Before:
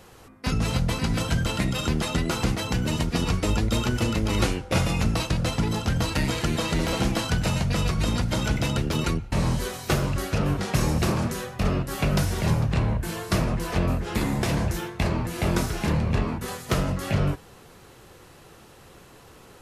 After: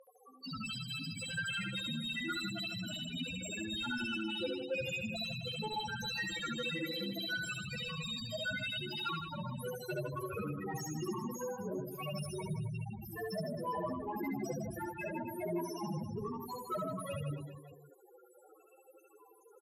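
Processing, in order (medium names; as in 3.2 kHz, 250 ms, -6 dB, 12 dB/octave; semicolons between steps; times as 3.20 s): RIAA curve recording; loudest bins only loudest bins 2; overdrive pedal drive 13 dB, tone 1.4 kHz, clips at -27 dBFS; reverse bouncing-ball echo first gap 70 ms, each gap 1.25×, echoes 5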